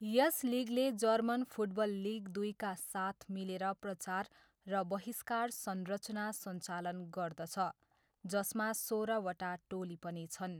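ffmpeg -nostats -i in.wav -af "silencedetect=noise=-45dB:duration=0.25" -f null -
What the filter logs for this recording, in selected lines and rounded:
silence_start: 4.24
silence_end: 4.67 | silence_duration: 0.43
silence_start: 7.71
silence_end: 8.25 | silence_duration: 0.54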